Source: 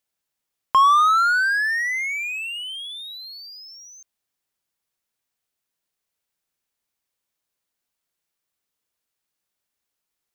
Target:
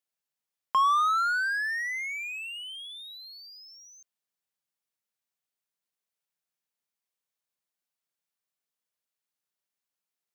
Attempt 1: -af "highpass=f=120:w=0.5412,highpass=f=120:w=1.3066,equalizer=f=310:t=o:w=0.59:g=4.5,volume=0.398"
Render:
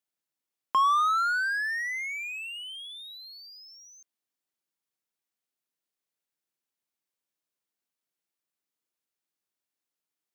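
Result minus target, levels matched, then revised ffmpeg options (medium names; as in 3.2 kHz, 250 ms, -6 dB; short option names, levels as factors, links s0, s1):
250 Hz band +5.0 dB
-af "highpass=f=120:w=0.5412,highpass=f=120:w=1.3066,equalizer=f=310:t=o:w=0.59:g=-4.5,volume=0.398"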